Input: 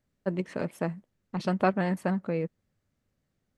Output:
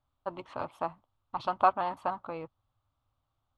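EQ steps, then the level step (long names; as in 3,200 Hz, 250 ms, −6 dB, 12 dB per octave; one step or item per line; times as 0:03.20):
drawn EQ curve 120 Hz 0 dB, 190 Hz −23 dB, 270 Hz −7 dB, 440 Hz −13 dB, 820 Hz +7 dB, 1,200 Hz +9 dB, 1,800 Hz −13 dB, 3,400 Hz +2 dB, 5,500 Hz −12 dB, 9,700 Hz −16 dB
0.0 dB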